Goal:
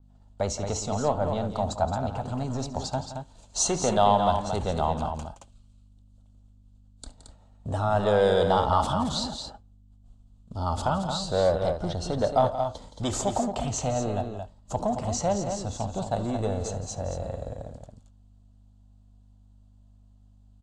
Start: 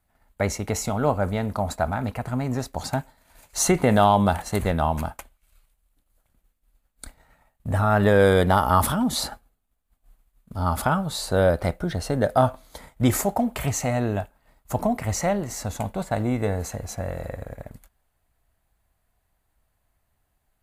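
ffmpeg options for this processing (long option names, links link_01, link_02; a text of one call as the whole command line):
ffmpeg -i in.wav -filter_complex "[0:a]aeval=exprs='val(0)+0.002*(sin(2*PI*50*n/s)+sin(2*PI*2*50*n/s)/2+sin(2*PI*3*50*n/s)/3+sin(2*PI*4*50*n/s)/4+sin(2*PI*5*50*n/s)/5)':channel_layout=same,acrossover=split=500|1200[link_01][link_02][link_03];[link_01]asoftclip=type=tanh:threshold=-28dB[link_04];[link_03]asuperpass=centerf=4900:order=8:qfactor=0.93[link_05];[link_04][link_02][link_05]amix=inputs=3:normalize=0,aecho=1:1:69|170|223:0.112|0.224|0.447,adynamicequalizer=threshold=0.00631:dfrequency=4500:dqfactor=0.7:tfrequency=4500:tqfactor=0.7:attack=5:release=100:ratio=0.375:range=3.5:mode=cutabove:tftype=highshelf" out.wav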